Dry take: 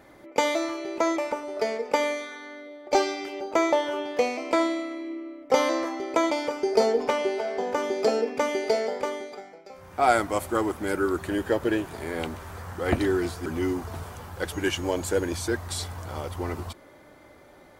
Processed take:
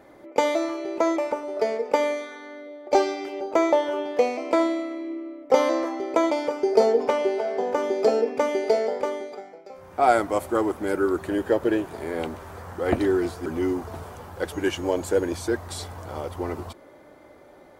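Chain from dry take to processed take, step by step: bell 490 Hz +7 dB 2.5 oct; gain -3.5 dB

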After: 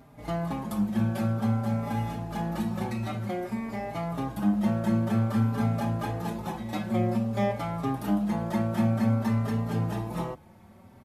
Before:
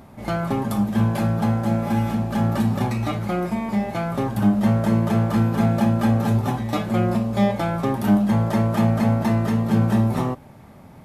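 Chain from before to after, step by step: endless flanger 4.5 ms +0.52 Hz; gain -4.5 dB

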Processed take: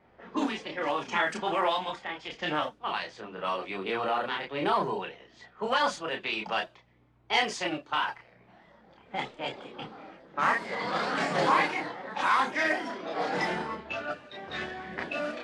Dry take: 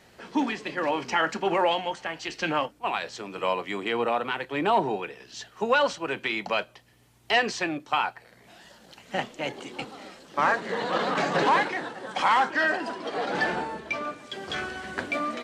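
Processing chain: chorus voices 4, 0.31 Hz, delay 30 ms, depth 3.3 ms; low-pass opened by the level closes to 1300 Hz, open at -24 dBFS; formant shift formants +2 st

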